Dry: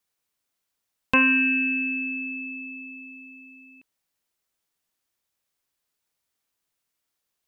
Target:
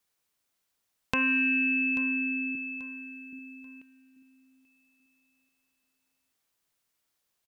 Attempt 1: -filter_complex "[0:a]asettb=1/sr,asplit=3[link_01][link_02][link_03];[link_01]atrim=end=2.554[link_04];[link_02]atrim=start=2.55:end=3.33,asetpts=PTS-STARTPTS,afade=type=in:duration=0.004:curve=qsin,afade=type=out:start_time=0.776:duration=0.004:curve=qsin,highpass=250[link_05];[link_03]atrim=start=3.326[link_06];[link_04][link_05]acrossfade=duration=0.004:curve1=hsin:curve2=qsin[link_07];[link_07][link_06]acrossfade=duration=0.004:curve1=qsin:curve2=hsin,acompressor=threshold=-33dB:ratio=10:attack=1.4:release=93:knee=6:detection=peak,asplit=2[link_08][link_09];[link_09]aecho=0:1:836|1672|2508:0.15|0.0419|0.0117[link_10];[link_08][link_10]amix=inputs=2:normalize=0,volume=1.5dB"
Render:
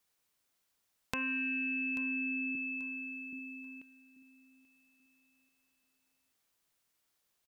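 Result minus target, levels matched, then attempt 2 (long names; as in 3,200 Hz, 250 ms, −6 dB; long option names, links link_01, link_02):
downward compressor: peak gain reduction +9.5 dB
-filter_complex "[0:a]asettb=1/sr,asplit=3[link_01][link_02][link_03];[link_01]atrim=end=2.554[link_04];[link_02]atrim=start=2.55:end=3.33,asetpts=PTS-STARTPTS,afade=type=in:duration=0.004:curve=qsin,afade=type=out:start_time=0.776:duration=0.004:curve=qsin,highpass=250[link_05];[link_03]atrim=start=3.326[link_06];[link_04][link_05]acrossfade=duration=0.004:curve1=hsin:curve2=qsin[link_07];[link_07][link_06]acrossfade=duration=0.004:curve1=qsin:curve2=hsin,acompressor=threshold=-22.5dB:ratio=10:attack=1.4:release=93:knee=6:detection=peak,asplit=2[link_08][link_09];[link_09]aecho=0:1:836|1672|2508:0.15|0.0419|0.0117[link_10];[link_08][link_10]amix=inputs=2:normalize=0,volume=1.5dB"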